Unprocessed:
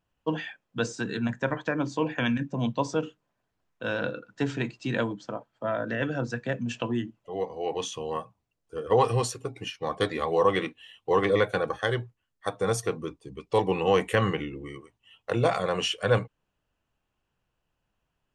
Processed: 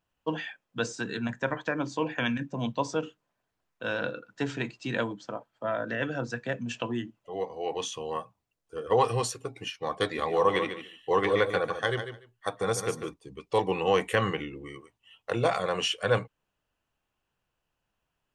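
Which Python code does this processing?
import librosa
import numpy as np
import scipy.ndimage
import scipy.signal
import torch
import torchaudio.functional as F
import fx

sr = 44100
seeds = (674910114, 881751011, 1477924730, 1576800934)

y = fx.echo_feedback(x, sr, ms=146, feedback_pct=16, wet_db=-9.0, at=(10.04, 13.14))
y = fx.low_shelf(y, sr, hz=380.0, db=-5.0)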